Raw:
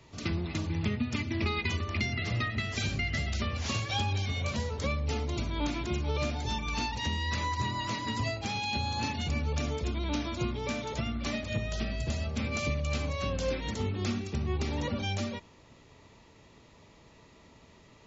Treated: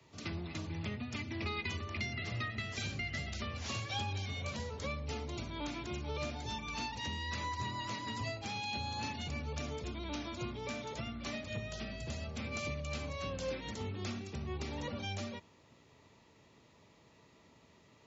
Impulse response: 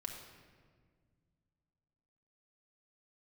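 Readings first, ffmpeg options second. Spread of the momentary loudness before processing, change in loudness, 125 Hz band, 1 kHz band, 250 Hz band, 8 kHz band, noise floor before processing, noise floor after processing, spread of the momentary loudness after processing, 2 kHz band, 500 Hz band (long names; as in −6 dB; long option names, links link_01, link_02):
3 LU, −7.5 dB, −9.0 dB, −6.0 dB, −8.5 dB, can't be measured, −57 dBFS, −64 dBFS, 4 LU, −6.0 dB, −6.5 dB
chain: -filter_complex "[0:a]acrossover=split=130|390|1400[link_01][link_02][link_03][link_04];[link_02]asoftclip=type=tanh:threshold=-36.5dB[link_05];[link_01][link_05][link_03][link_04]amix=inputs=4:normalize=0,highpass=83,volume=-6dB"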